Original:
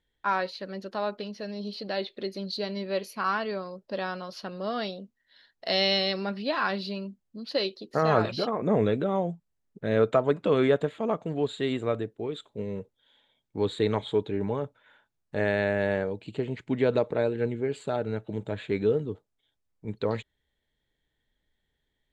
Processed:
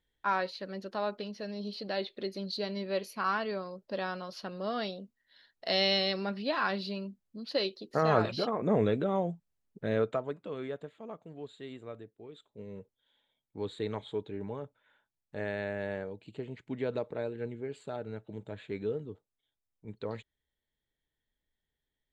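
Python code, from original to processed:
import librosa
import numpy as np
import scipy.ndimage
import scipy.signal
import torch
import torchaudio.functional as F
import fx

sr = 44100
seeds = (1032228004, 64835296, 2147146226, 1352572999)

y = fx.gain(x, sr, db=fx.line((9.85, -3.0), (10.45, -16.0), (12.25, -16.0), (12.8, -9.5)))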